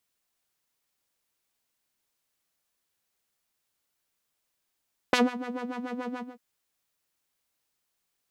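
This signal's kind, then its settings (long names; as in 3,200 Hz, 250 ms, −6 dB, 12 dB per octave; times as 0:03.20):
subtractive patch with filter wobble B4, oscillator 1 saw, sub −0.5 dB, filter bandpass, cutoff 200 Hz, Q 0.99, filter envelope 2.5 octaves, attack 2.8 ms, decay 0.17 s, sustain −17.5 dB, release 0.21 s, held 1.04 s, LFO 6.9 Hz, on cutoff 1.9 octaves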